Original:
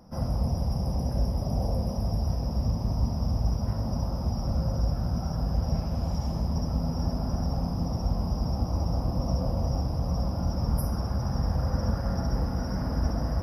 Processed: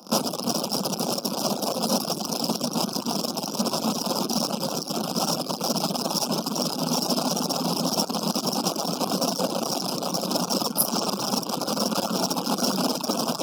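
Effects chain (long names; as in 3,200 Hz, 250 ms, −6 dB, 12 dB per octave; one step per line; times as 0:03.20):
in parallel at −10 dB: fuzz pedal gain 41 dB, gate −46 dBFS
on the sum: brickwall limiter −20.5 dBFS, peak gain reduction 8 dB
Chebyshev band-stop filter 1,300–2,800 Hz, order 2
reverb reduction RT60 0.84 s
Butterworth high-pass 190 Hz 36 dB per octave
high-shelf EQ 2,400 Hz +10 dB
level +6.5 dB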